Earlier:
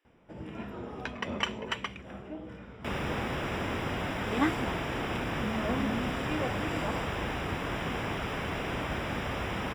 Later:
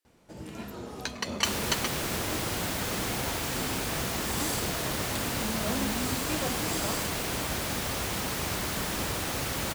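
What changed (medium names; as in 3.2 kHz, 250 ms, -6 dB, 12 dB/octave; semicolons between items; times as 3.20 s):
speech -12.0 dB; second sound: entry -1.40 s; master: remove Savitzky-Golay filter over 25 samples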